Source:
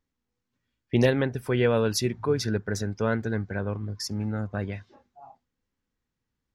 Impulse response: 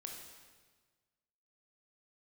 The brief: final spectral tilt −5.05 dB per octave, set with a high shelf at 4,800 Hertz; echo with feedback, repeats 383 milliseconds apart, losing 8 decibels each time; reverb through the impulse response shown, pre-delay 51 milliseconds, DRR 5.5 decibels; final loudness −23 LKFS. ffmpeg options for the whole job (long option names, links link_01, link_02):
-filter_complex "[0:a]highshelf=frequency=4800:gain=5.5,aecho=1:1:383|766|1149|1532|1915:0.398|0.159|0.0637|0.0255|0.0102,asplit=2[link_01][link_02];[1:a]atrim=start_sample=2205,adelay=51[link_03];[link_02][link_03]afir=irnorm=-1:irlink=0,volume=-2dB[link_04];[link_01][link_04]amix=inputs=2:normalize=0,volume=2.5dB"